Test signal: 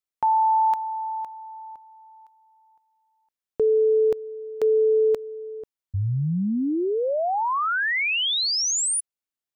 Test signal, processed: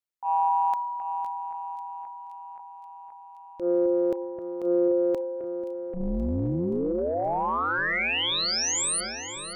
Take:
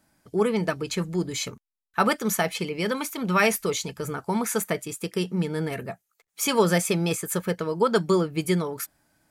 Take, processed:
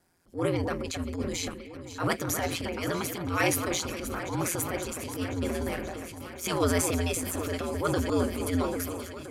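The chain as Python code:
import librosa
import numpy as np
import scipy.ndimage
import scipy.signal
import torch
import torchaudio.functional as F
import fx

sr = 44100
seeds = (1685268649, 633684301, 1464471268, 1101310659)

y = x * np.sin(2.0 * np.pi * 86.0 * np.arange(len(x)) / sr)
y = fx.echo_alternate(y, sr, ms=263, hz=2300.0, feedback_pct=87, wet_db=-12.0)
y = fx.transient(y, sr, attack_db=-12, sustain_db=4)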